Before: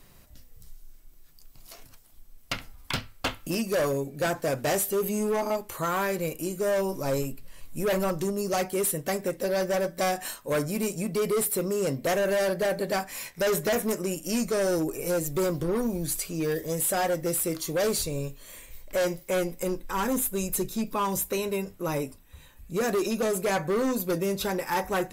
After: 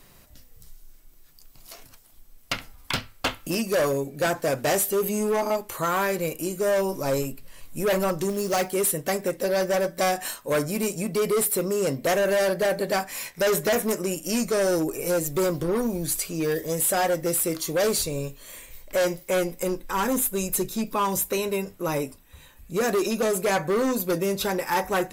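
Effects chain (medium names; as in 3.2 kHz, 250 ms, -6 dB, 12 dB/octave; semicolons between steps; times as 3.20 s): bass shelf 190 Hz -4.5 dB; 8.29–8.72 s: short-mantissa float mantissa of 2-bit; trim +3.5 dB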